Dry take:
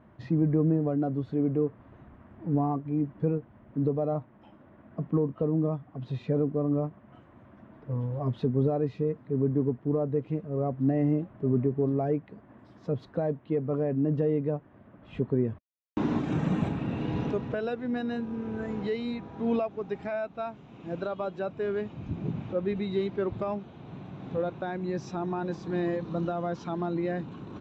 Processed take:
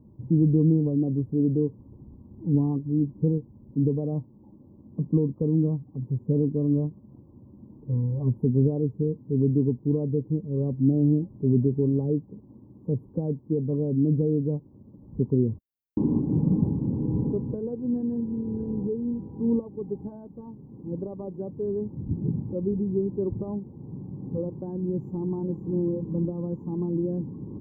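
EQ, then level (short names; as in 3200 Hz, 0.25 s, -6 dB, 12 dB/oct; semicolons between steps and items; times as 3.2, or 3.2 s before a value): inverse Chebyshev band-stop 1300–4900 Hz, stop band 40 dB; Butterworth band-stop 4700 Hz, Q 0.59; fixed phaser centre 2500 Hz, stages 6; +6.0 dB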